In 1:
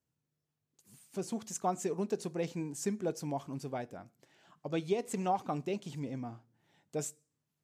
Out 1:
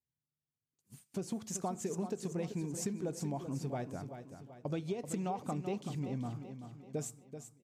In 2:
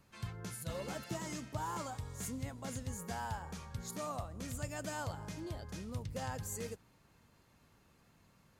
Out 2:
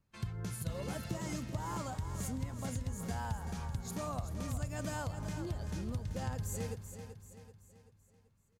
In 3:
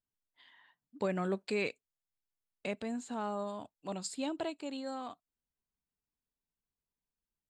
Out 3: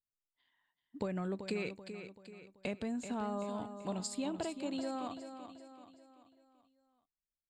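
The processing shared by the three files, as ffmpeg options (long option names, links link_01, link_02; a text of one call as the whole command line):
ffmpeg -i in.wav -af "lowshelf=frequency=170:gain=11,agate=range=-17dB:threshold=-56dB:ratio=16:detection=peak,acompressor=threshold=-35dB:ratio=6,aecho=1:1:384|768|1152|1536|1920:0.335|0.154|0.0709|0.0326|0.015,volume=1dB" out.wav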